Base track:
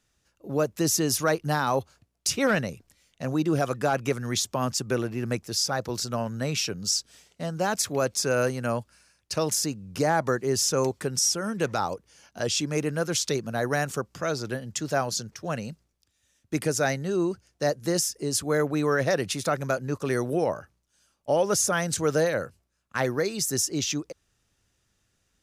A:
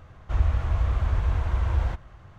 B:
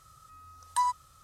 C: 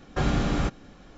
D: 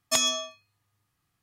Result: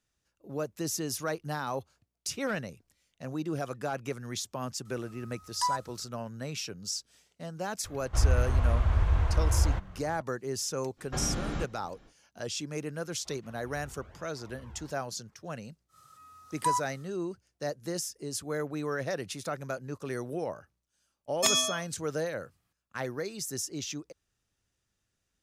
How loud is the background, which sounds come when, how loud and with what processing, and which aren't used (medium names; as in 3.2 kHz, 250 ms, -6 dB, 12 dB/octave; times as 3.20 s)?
base track -9 dB
4.85 s: add B -2.5 dB
7.84 s: add A -1 dB
10.96 s: add C -8.5 dB, fades 0.05 s
12.96 s: add A -16.5 dB + cancelling through-zero flanger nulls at 1.1 Hz, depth 1.9 ms
15.88 s: add B -1 dB, fades 0.10 s + high-pass 150 Hz
21.31 s: add D -1.5 dB